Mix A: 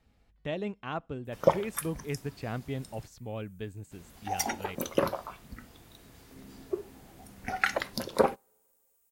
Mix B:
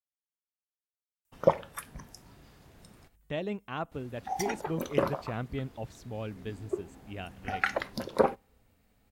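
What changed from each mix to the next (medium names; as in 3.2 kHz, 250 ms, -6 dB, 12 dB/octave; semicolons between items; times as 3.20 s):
speech: entry +2.85 s; background: add treble shelf 3.9 kHz -9.5 dB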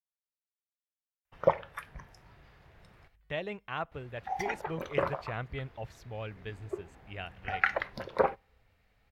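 background: add low-pass 2.7 kHz 6 dB/octave; master: add graphic EQ 250/2000/8000 Hz -11/+5/-7 dB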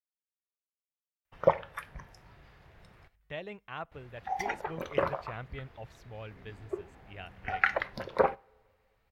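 speech -4.5 dB; background: send +11.5 dB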